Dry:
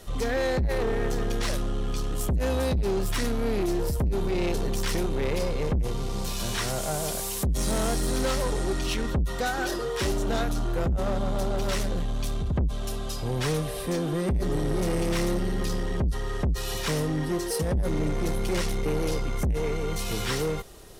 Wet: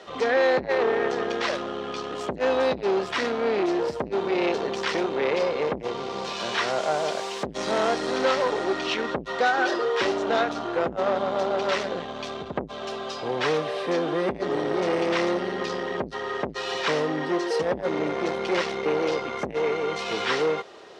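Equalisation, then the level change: HPF 430 Hz 12 dB/oct; air absorption 140 m; bell 12000 Hz -10.5 dB 1.2 oct; +8.5 dB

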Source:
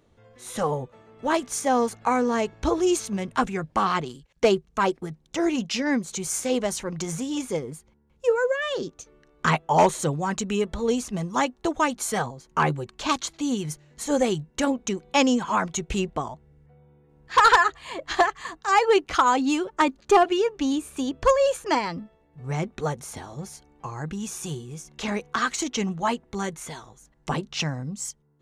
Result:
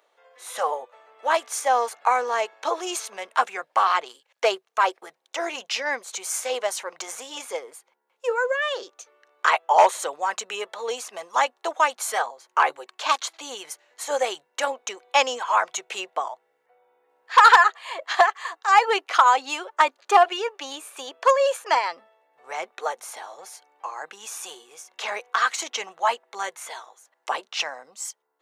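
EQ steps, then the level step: HPF 580 Hz 24 dB/oct; bell 6800 Hz -4.5 dB 1.4 oct; +4.0 dB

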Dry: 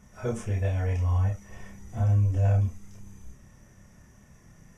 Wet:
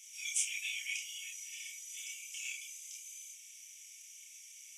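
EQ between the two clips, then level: rippled Chebyshev high-pass 2200 Hz, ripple 6 dB; +16.0 dB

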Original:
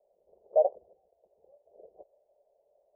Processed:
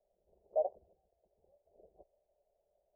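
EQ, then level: tilt -3.5 dB/oct; bell 490 Hz -8 dB 0.63 oct; -7.5 dB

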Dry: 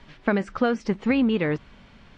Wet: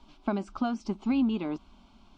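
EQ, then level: fixed phaser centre 490 Hz, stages 6; -3.5 dB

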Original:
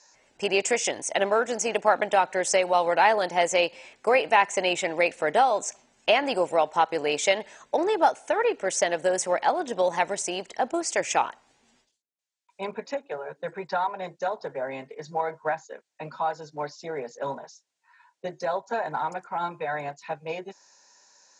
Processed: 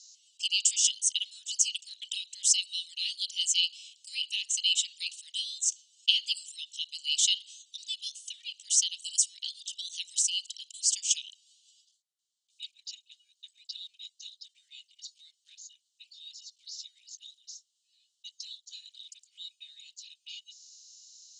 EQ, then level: rippled Chebyshev high-pass 2900 Hz, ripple 3 dB; LPF 8700 Hz 24 dB/oct; +8.0 dB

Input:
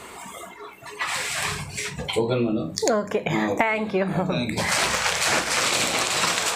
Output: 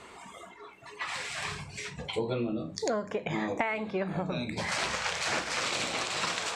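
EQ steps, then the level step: LPF 6700 Hz 12 dB/oct; -8.5 dB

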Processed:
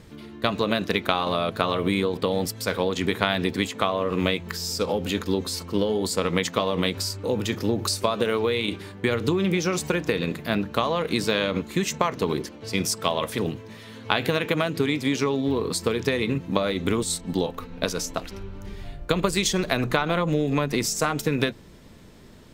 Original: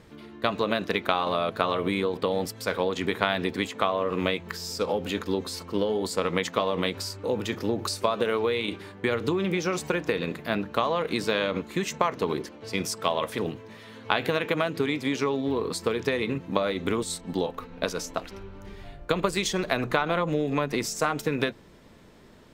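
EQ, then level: low shelf 290 Hz +8.5 dB; high shelf 2800 Hz +8 dB; -1.0 dB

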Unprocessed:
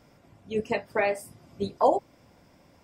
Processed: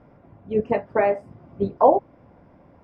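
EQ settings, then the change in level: LPF 1300 Hz 12 dB/oct; +6.5 dB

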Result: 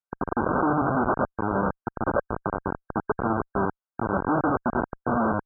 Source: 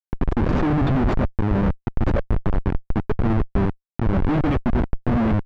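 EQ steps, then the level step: HPF 1200 Hz 6 dB/oct; brick-wall FIR low-pass 1600 Hz; +8.5 dB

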